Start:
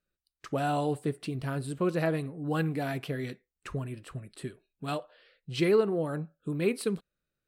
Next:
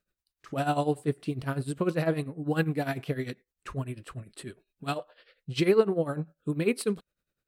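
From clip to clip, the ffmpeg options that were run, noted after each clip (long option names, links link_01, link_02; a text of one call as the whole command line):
ffmpeg -i in.wav -af "tremolo=f=10:d=0.8,volume=5dB" out.wav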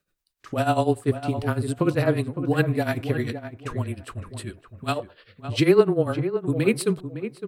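ffmpeg -i in.wav -filter_complex "[0:a]asplit=2[link_01][link_02];[link_02]adelay=560,lowpass=frequency=1700:poles=1,volume=-10dB,asplit=2[link_03][link_04];[link_04]adelay=560,lowpass=frequency=1700:poles=1,volume=0.2,asplit=2[link_05][link_06];[link_06]adelay=560,lowpass=frequency=1700:poles=1,volume=0.2[link_07];[link_01][link_03][link_05][link_07]amix=inputs=4:normalize=0,afreqshift=-19,volume=5.5dB" out.wav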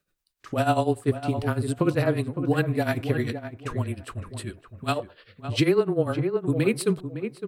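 ffmpeg -i in.wav -af "alimiter=limit=-11dB:level=0:latency=1:release=238" out.wav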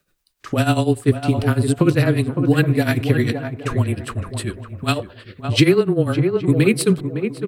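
ffmpeg -i in.wav -filter_complex "[0:a]acrossover=split=420|1400[link_01][link_02][link_03];[link_02]acompressor=threshold=-38dB:ratio=6[link_04];[link_01][link_04][link_03]amix=inputs=3:normalize=0,asplit=2[link_05][link_06];[link_06]adelay=816.3,volume=-17dB,highshelf=frequency=4000:gain=-18.4[link_07];[link_05][link_07]amix=inputs=2:normalize=0,volume=9dB" out.wav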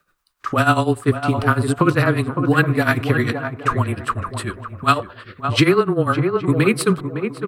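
ffmpeg -i in.wav -af "equalizer=frequency=1200:width_type=o:width=0.99:gain=14.5,volume=-2dB" out.wav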